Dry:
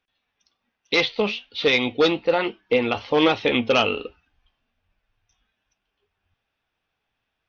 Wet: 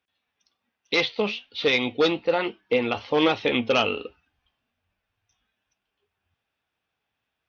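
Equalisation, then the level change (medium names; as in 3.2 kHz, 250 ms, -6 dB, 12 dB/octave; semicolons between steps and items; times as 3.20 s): high-pass 65 Hz; -2.5 dB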